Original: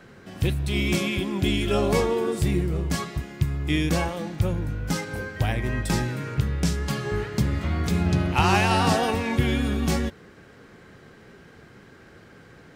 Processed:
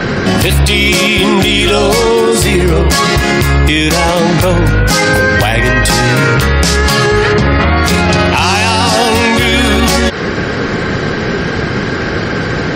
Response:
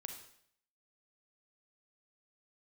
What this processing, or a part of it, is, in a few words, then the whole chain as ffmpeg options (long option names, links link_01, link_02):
mastering chain: -filter_complex "[0:a]equalizer=frequency=4800:width_type=o:width=0.36:gain=4,acrossover=split=440|2900[link_01][link_02][link_03];[link_01]acompressor=threshold=-36dB:ratio=4[link_04];[link_02]acompressor=threshold=-33dB:ratio=4[link_05];[link_03]acompressor=threshold=-34dB:ratio=4[link_06];[link_04][link_05][link_06]amix=inputs=3:normalize=0,acompressor=threshold=-36dB:ratio=1.5,asoftclip=type=tanh:threshold=-22.5dB,alimiter=level_in=35dB:limit=-1dB:release=50:level=0:latency=1,asplit=3[link_07][link_08][link_09];[link_07]afade=type=out:start_time=7.32:duration=0.02[link_10];[link_08]aemphasis=mode=reproduction:type=75fm,afade=type=in:start_time=7.32:duration=0.02,afade=type=out:start_time=7.76:duration=0.02[link_11];[link_09]afade=type=in:start_time=7.76:duration=0.02[link_12];[link_10][link_11][link_12]amix=inputs=3:normalize=0,afftfilt=real='re*gte(hypot(re,im),0.0355)':imag='im*gte(hypot(re,im),0.0355)':win_size=1024:overlap=0.75,volume=-1dB"